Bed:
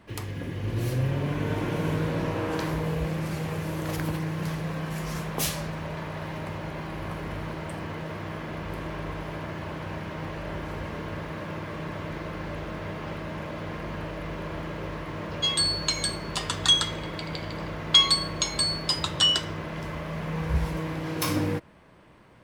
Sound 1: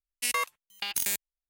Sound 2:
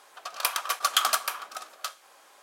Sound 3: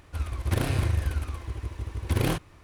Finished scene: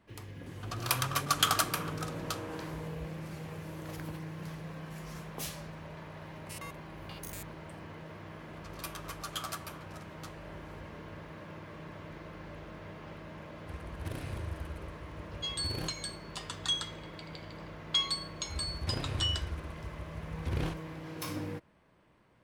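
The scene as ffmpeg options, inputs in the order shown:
ffmpeg -i bed.wav -i cue0.wav -i cue1.wav -i cue2.wav -filter_complex "[2:a]asplit=2[link_01][link_02];[3:a]asplit=2[link_03][link_04];[0:a]volume=-11.5dB[link_05];[link_02]asplit=2[link_06][link_07];[link_07]adelay=9.3,afreqshift=-1.5[link_08];[link_06][link_08]amix=inputs=2:normalize=1[link_09];[link_04]acrossover=split=6500[link_10][link_11];[link_11]acompressor=threshold=-52dB:ratio=4:attack=1:release=60[link_12];[link_10][link_12]amix=inputs=2:normalize=0[link_13];[link_01]atrim=end=2.42,asetpts=PTS-STARTPTS,volume=-3.5dB,afade=type=in:duration=0.004:curve=hsin,afade=type=out:start_time=2.416:duration=0.004:curve=hsin,adelay=460[link_14];[1:a]atrim=end=1.49,asetpts=PTS-STARTPTS,volume=-17dB,afade=type=in:duration=0.004:curve=hsin,afade=type=out:start_time=1.486:duration=0.004:curve=hsin,adelay=6270[link_15];[link_09]atrim=end=2.42,asetpts=PTS-STARTPTS,volume=-12.5dB,afade=type=in:duration=0.004:curve=hsin,afade=type=out:start_time=2.416:duration=0.004:curve=hsin,adelay=8390[link_16];[link_03]atrim=end=2.63,asetpts=PTS-STARTPTS,volume=-14dB,afade=type=in:duration=0.004:curve=hsin,afade=type=out:start_time=2.626:duration=0.004:curve=hsin,adelay=13540[link_17];[link_13]atrim=end=2.63,asetpts=PTS-STARTPTS,volume=-10dB,afade=type=in:duration=0.004:curve=hsin,afade=type=out:start_time=2.626:duration=0.004:curve=hsin,adelay=18360[link_18];[link_05][link_14][link_15][link_16][link_17][link_18]amix=inputs=6:normalize=0" out.wav

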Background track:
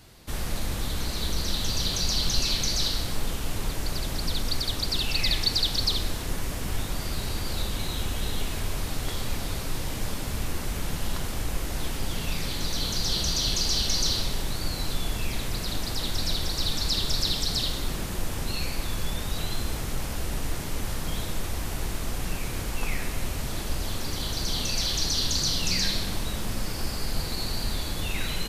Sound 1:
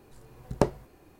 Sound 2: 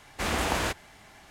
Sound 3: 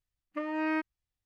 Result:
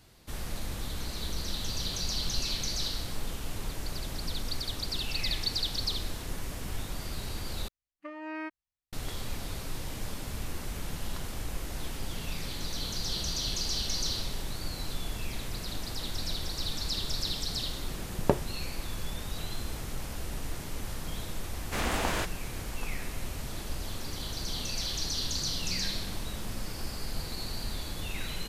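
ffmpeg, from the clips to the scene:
ffmpeg -i bed.wav -i cue0.wav -i cue1.wav -i cue2.wav -filter_complex "[0:a]volume=-6.5dB[link_01];[3:a]lowshelf=frequency=270:gain=-6[link_02];[1:a]lowpass=3900[link_03];[link_01]asplit=2[link_04][link_05];[link_04]atrim=end=7.684[link_06];[link_02]atrim=end=1.25,asetpts=PTS-STARTPTS,volume=-6dB[link_07];[link_05]atrim=start=8.926[link_08];[link_03]atrim=end=1.19,asetpts=PTS-STARTPTS,volume=-1.5dB,afade=type=in:duration=0.004:curve=hsin,afade=type=out:start_time=1.186:duration=0.004:curve=hsin,adelay=17680[link_09];[2:a]atrim=end=1.3,asetpts=PTS-STARTPTS,volume=-3dB,afade=type=in:duration=0.004:curve=hsin,afade=type=out:start_time=1.296:duration=0.004:curve=hsin,adelay=21530[link_10];[link_06][link_07]acrossfade=duration=0.004:curve1=hsin:curve2=hsin[link_11];[link_11][link_08]acrossfade=duration=0.004:curve1=hsin:curve2=hsin[link_12];[link_12][link_09][link_10]amix=inputs=3:normalize=0" out.wav

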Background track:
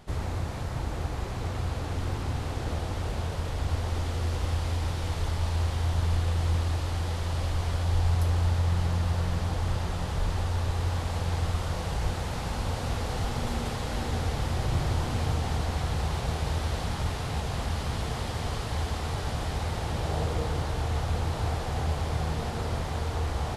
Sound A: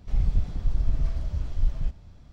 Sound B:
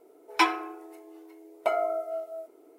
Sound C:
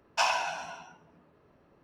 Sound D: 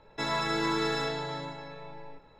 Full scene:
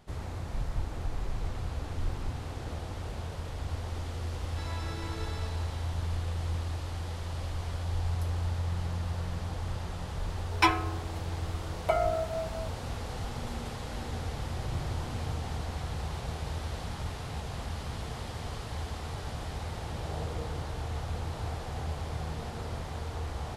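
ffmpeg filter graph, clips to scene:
ffmpeg -i bed.wav -i cue0.wav -i cue1.wav -i cue2.wav -i cue3.wav -filter_complex "[0:a]volume=-6.5dB[link_01];[1:a]atrim=end=2.32,asetpts=PTS-STARTPTS,volume=-11dB,afade=type=in:duration=0.004:curve=hsin,afade=type=out:start_time=2.316:duration=0.004:curve=hsin,adelay=410[link_02];[4:a]atrim=end=2.39,asetpts=PTS-STARTPTS,volume=-14dB,afade=type=in:duration=0.004:curve=hsin,afade=type=out:start_time=2.386:duration=0.004:curve=hsin,adelay=4380[link_03];[2:a]atrim=end=2.78,asetpts=PTS-STARTPTS,volume=-1dB,afade=type=in:duration=0.004:curve=hsin,afade=type=out:start_time=2.776:duration=0.004:curve=hsin,adelay=10230[link_04];[link_01][link_02][link_03][link_04]amix=inputs=4:normalize=0" out.wav

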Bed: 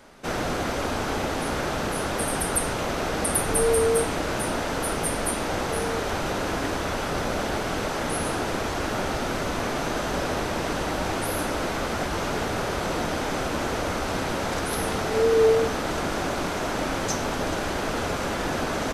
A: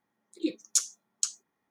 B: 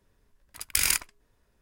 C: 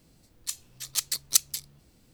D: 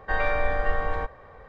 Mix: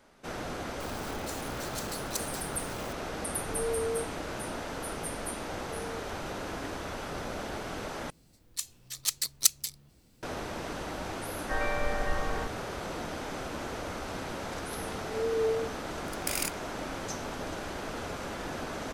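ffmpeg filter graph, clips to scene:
ffmpeg -i bed.wav -i cue0.wav -i cue1.wav -i cue2.wav -i cue3.wav -filter_complex "[3:a]asplit=2[link_01][link_02];[0:a]volume=-10dB[link_03];[link_01]aeval=exprs='val(0)+0.5*0.0708*sgn(val(0))':channel_layout=same[link_04];[link_03]asplit=2[link_05][link_06];[link_05]atrim=end=8.104[link_07];[link_02]atrim=end=2.13,asetpts=PTS-STARTPTS,volume=-1.5dB[link_08];[link_06]atrim=start=10.226[link_09];[link_04]atrim=end=2.13,asetpts=PTS-STARTPTS,volume=-16dB,afade=type=in:duration=0.004:curve=hsin,afade=type=out:start_time=2.126:duration=0.004:curve=hsin,adelay=800[link_10];[4:a]atrim=end=1.48,asetpts=PTS-STARTPTS,volume=-6.5dB,afade=type=in:duration=0.004:curve=hsin,afade=type=out:start_time=1.476:duration=0.004:curve=hsin,adelay=11410[link_11];[2:a]atrim=end=1.61,asetpts=PTS-STARTPTS,volume=-8.5dB,afade=type=in:duration=0.004:curve=hsin,afade=type=out:start_time=1.606:duration=0.004:curve=hsin,adelay=15520[link_12];[link_07][link_08]acrossfade=duration=0.004:curve1=hsin:curve2=hsin[link_13];[link_13][link_09]acrossfade=duration=0.004:curve1=hsin:curve2=hsin[link_14];[link_14][link_10][link_11][link_12]amix=inputs=4:normalize=0" out.wav

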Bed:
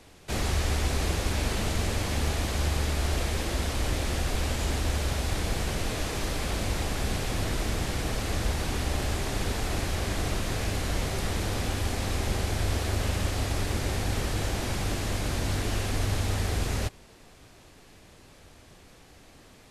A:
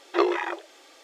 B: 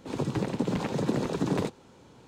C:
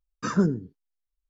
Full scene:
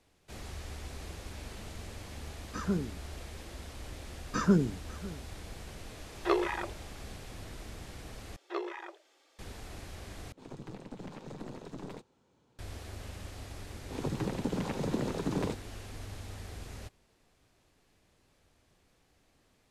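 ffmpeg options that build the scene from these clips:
ffmpeg -i bed.wav -i cue0.wav -i cue1.wav -i cue2.wav -filter_complex "[3:a]asplit=2[link_01][link_02];[1:a]asplit=2[link_03][link_04];[2:a]asplit=2[link_05][link_06];[0:a]volume=-16dB[link_07];[link_02]aecho=1:1:546:0.112[link_08];[link_05]aeval=exprs='(tanh(14.1*val(0)+0.75)-tanh(0.75))/14.1':channel_layout=same[link_09];[link_07]asplit=3[link_10][link_11][link_12];[link_10]atrim=end=8.364[link_13];[link_04]atrim=end=1.03,asetpts=PTS-STARTPTS,volume=-14.5dB[link_14];[link_11]atrim=start=9.386:end=10.324[link_15];[link_09]atrim=end=2.27,asetpts=PTS-STARTPTS,volume=-11.5dB[link_16];[link_12]atrim=start=12.586[link_17];[link_01]atrim=end=1.29,asetpts=PTS-STARTPTS,volume=-9.5dB,afade=type=in:duration=0.004:curve=hsin,afade=type=out:start_time=1.286:duration=0.004:curve=hsin,adelay=2310[link_18];[link_08]atrim=end=1.29,asetpts=PTS-STARTPTS,volume=-2.5dB,afade=type=in:duration=0.004:curve=hsin,afade=type=out:start_time=1.286:duration=0.004:curve=hsin,adelay=4110[link_19];[link_03]atrim=end=1.03,asetpts=PTS-STARTPTS,volume=-6dB,afade=type=in:duration=0.004:curve=hsin,afade=type=out:start_time=1.026:duration=0.004:curve=hsin,adelay=6110[link_20];[link_06]atrim=end=2.27,asetpts=PTS-STARTPTS,volume=-5dB,afade=type=in:duration=0.004:curve=hsin,afade=type=out:start_time=2.266:duration=0.004:curve=hsin,adelay=13850[link_21];[link_13][link_14]acrossfade=duration=0.004:curve1=hsin:curve2=hsin[link_22];[link_22][link_15]acrossfade=duration=0.004:curve1=hsin:curve2=hsin[link_23];[link_23][link_16]acrossfade=duration=0.004:curve1=hsin:curve2=hsin[link_24];[link_24][link_17]acrossfade=duration=0.004:curve1=hsin:curve2=hsin[link_25];[link_25][link_18][link_19][link_20][link_21]amix=inputs=5:normalize=0" out.wav

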